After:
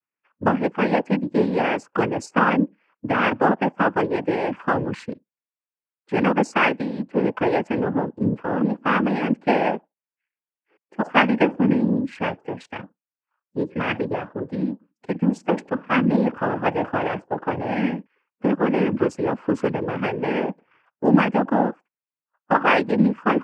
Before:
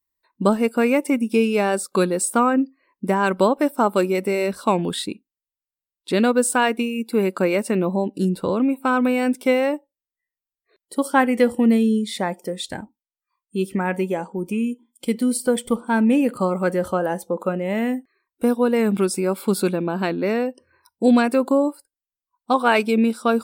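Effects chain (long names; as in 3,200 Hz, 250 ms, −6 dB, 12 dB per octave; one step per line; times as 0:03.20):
adaptive Wiener filter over 9 samples
high shelf with overshoot 2,400 Hz −9 dB, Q 3
cochlear-implant simulation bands 8
level −1.5 dB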